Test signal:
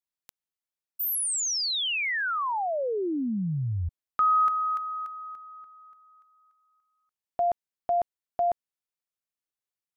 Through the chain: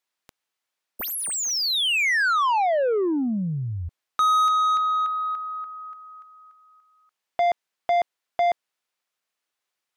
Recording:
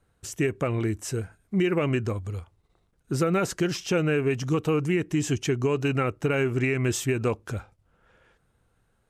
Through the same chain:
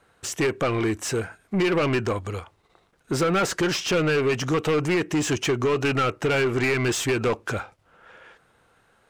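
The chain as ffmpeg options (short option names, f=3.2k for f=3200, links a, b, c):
-filter_complex "[0:a]acontrast=71,asplit=2[a][b];[b]highpass=f=720:p=1,volume=21dB,asoftclip=type=tanh:threshold=-7.5dB[c];[a][c]amix=inputs=2:normalize=0,lowpass=f=3.5k:p=1,volume=-6dB,volume=-7dB"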